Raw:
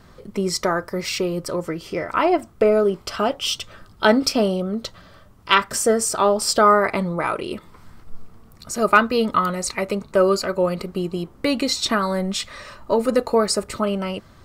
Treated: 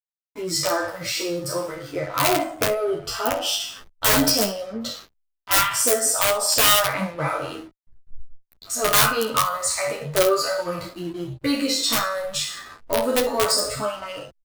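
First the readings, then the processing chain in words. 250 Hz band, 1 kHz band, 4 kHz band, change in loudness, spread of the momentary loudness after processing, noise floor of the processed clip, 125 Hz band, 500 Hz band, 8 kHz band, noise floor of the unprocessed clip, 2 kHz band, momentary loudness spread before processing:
−5.5 dB, −3.0 dB, +3.0 dB, −0.5 dB, 14 LU, −73 dBFS, −3.0 dB, −4.0 dB, +5.5 dB, −49 dBFS, −1.0 dB, 11 LU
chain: peak hold with a decay on every bin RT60 0.70 s
wrap-around overflow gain 7 dB
on a send: ambience of single reflections 21 ms −9 dB, 52 ms −16 dB, 68 ms −17.5 dB
on the sum: pitch vibrato 8.7 Hz 7.6 cents
parametric band 140 Hz +10.5 dB 0.33 octaves
noise reduction from a noise print of the clip's start 26 dB
in parallel at −1 dB: downward compressor 6 to 1, threshold −29 dBFS, peak gain reduction 17.5 dB
on the sum: high-shelf EQ 9,700 Hz +11.5 dB
slack as between gear wheels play −26 dBFS
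barber-pole flanger 10.6 ms +0.41 Hz
level −3.5 dB

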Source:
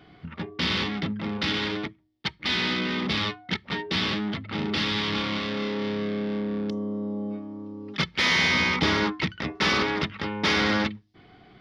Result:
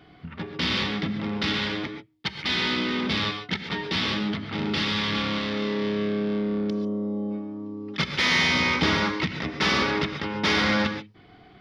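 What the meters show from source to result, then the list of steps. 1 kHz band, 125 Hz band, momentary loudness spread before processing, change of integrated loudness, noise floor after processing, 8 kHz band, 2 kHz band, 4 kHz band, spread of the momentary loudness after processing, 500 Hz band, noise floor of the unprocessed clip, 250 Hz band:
+1.0 dB, +1.0 dB, 12 LU, +1.0 dB, −52 dBFS, can't be measured, +0.5 dB, +0.5 dB, 11 LU, +1.5 dB, −56 dBFS, +1.5 dB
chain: reverb whose tail is shaped and stops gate 160 ms rising, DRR 6.5 dB

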